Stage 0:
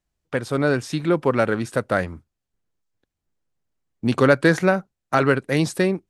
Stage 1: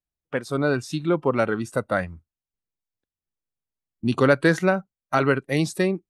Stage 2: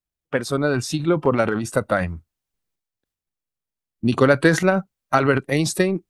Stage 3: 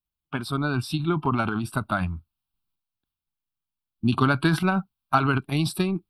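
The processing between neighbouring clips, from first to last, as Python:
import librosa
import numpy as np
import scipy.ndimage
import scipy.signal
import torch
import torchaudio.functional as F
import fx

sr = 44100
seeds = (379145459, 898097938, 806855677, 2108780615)

y1 = fx.noise_reduce_blind(x, sr, reduce_db=12)
y1 = F.gain(torch.from_numpy(y1), -2.0).numpy()
y2 = fx.transient(y1, sr, attack_db=5, sustain_db=9)
y3 = fx.fixed_phaser(y2, sr, hz=1900.0, stages=6)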